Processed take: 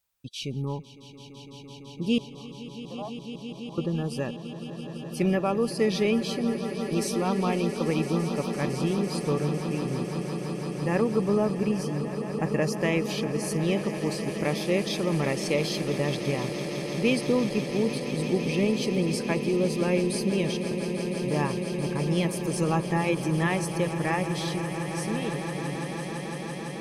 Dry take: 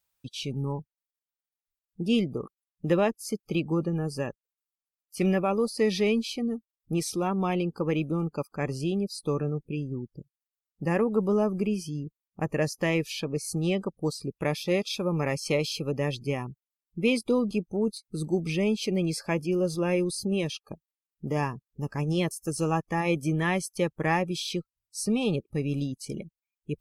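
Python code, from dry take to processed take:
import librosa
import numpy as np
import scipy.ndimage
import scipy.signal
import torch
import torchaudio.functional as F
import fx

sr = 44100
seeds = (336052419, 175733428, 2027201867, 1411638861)

y = fx.fade_out_tail(x, sr, length_s=3.49)
y = fx.formant_cascade(y, sr, vowel='a', at=(2.18, 3.78))
y = fx.echo_swell(y, sr, ms=168, loudest=8, wet_db=-14.5)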